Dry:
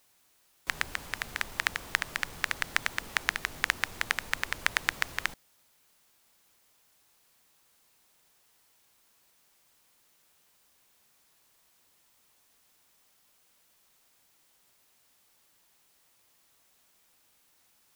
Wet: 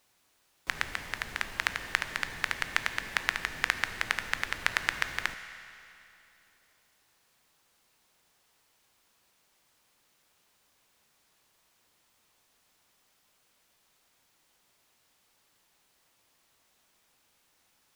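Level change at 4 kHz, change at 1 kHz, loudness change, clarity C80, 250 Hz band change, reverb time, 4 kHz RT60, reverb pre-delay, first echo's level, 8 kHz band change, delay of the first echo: −0.5 dB, +0.5 dB, −0.5 dB, 11.0 dB, +0.5 dB, 2.9 s, 2.6 s, 15 ms, no echo audible, −3.0 dB, no echo audible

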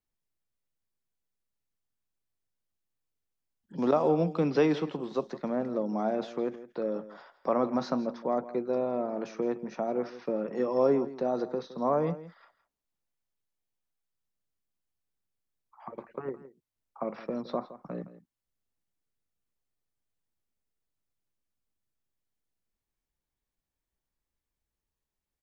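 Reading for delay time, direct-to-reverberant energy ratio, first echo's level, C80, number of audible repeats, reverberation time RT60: 165 ms, no reverb audible, −15.5 dB, no reverb audible, 1, no reverb audible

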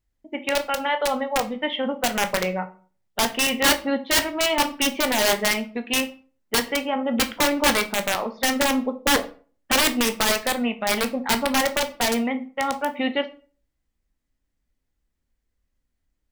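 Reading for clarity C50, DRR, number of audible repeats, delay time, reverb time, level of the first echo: 15.5 dB, 8.0 dB, no echo audible, no echo audible, 0.40 s, no echo audible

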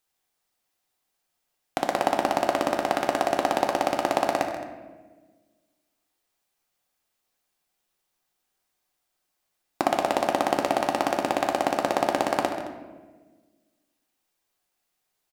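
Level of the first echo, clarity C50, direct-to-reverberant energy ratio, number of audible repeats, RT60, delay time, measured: −12.0 dB, 5.5 dB, 2.0 dB, 2, 1.3 s, 134 ms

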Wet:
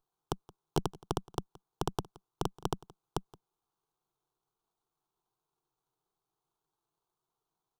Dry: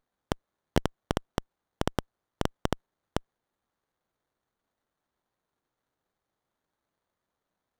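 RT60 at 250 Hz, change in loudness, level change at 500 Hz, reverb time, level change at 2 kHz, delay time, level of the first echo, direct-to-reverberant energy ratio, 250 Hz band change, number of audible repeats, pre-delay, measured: no reverb audible, −4.5 dB, −4.5 dB, no reverb audible, −11.5 dB, 172 ms, −22.0 dB, no reverb audible, −6.0 dB, 1, no reverb audible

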